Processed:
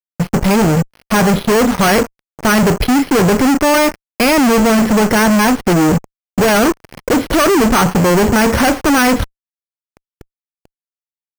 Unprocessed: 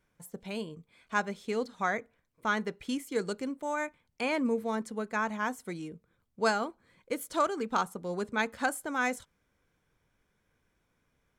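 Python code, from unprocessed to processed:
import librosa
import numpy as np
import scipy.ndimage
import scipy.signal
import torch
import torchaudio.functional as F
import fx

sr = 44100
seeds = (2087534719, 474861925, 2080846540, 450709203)

y = fx.tilt_eq(x, sr, slope=-2.5)
y = fx.fuzz(y, sr, gain_db=52.0, gate_db=-55.0)
y = np.repeat(scipy.signal.resample_poly(y, 1, 6), 6)[:len(y)]
y = F.gain(torch.from_numpy(y), 3.5).numpy()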